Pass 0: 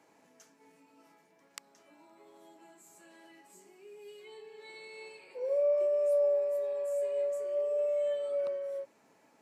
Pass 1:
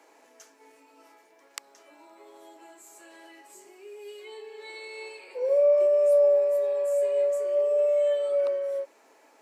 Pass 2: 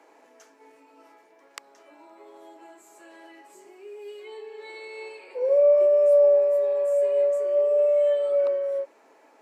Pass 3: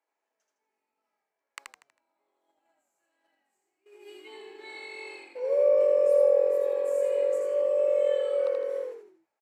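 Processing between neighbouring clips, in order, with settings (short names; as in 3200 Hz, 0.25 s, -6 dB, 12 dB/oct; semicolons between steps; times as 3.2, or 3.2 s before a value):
HPF 320 Hz 24 dB/oct; gain +7.5 dB
high shelf 3100 Hz -9.5 dB; gain +3 dB
HPF 970 Hz 6 dB/oct; gate -48 dBFS, range -26 dB; on a send: frequency-shifting echo 80 ms, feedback 41%, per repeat -45 Hz, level -3.5 dB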